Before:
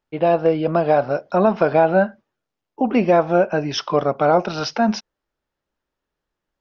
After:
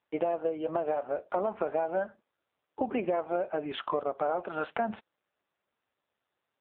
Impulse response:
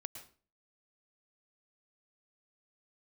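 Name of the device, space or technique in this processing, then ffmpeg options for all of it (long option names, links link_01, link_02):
voicemail: -af "highpass=340,lowpass=2600,acompressor=threshold=-26dB:ratio=8" -ar 8000 -c:a libopencore_amrnb -b:a 5900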